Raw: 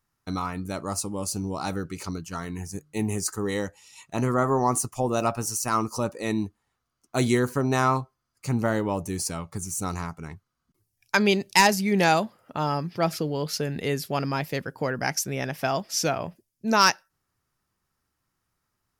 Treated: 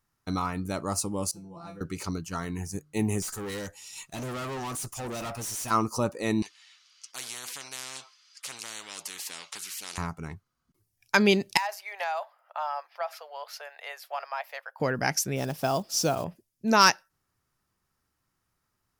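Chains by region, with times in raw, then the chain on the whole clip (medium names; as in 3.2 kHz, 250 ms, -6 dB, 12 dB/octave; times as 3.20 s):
1.31–1.81 s: treble shelf 2.5 kHz -11 dB + feedback comb 170 Hz, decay 0.23 s, mix 100%
3.22–5.71 s: treble shelf 2.5 kHz +10 dB + valve stage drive 33 dB, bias 0.25
6.42–9.98 s: Butterworth band-pass 3.8 kHz, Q 1.1 + spectrum-flattening compressor 10:1
11.57–14.80 s: steep high-pass 630 Hz 48 dB/octave + peaking EQ 8 kHz -14.5 dB 2.5 oct + compression 10:1, threshold -26 dBFS
15.36–16.26 s: block-companded coder 5-bit + peaking EQ 2 kHz -10.5 dB 0.87 oct
whole clip: none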